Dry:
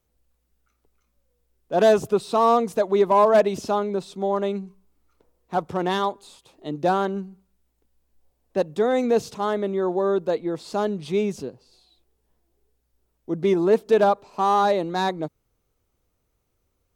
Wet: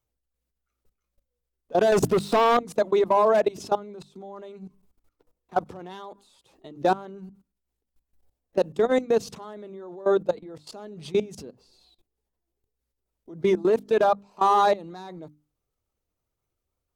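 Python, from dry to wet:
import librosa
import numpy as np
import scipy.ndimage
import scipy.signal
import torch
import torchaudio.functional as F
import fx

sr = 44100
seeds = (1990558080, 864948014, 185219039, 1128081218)

y = fx.spec_quant(x, sr, step_db=15)
y = fx.leveller(y, sr, passes=3, at=(1.92, 2.57))
y = fx.level_steps(y, sr, step_db=21)
y = fx.hum_notches(y, sr, base_hz=50, count=6)
y = F.gain(torch.from_numpy(y), 2.5).numpy()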